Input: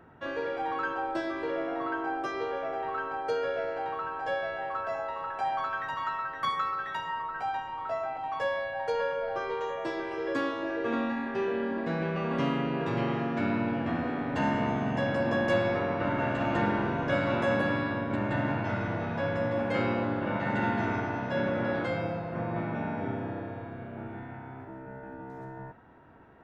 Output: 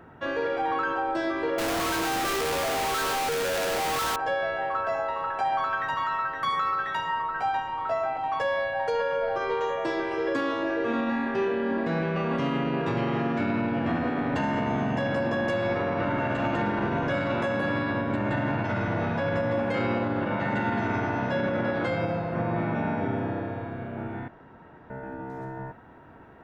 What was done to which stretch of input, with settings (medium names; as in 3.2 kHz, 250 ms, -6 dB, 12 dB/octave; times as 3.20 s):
1.58–4.16 s: one-bit comparator
24.28–24.90 s: room tone
whole clip: peak limiter -24 dBFS; trim +5.5 dB